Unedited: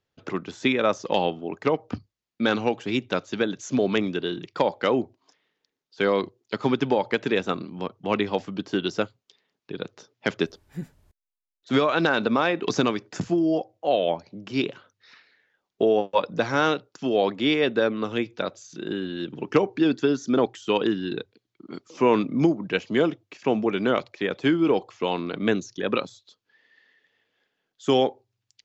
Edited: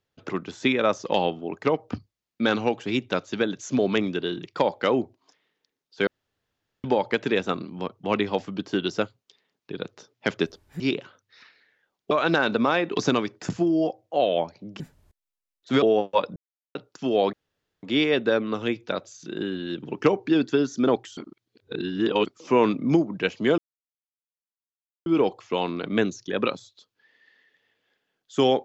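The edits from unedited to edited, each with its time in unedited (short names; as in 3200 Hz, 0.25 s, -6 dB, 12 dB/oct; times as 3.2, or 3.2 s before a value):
6.07–6.84 room tone
10.8–11.82 swap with 14.51–15.82
16.36–16.75 mute
17.33 insert room tone 0.50 s
20.67–21.76 reverse
23.08–24.56 mute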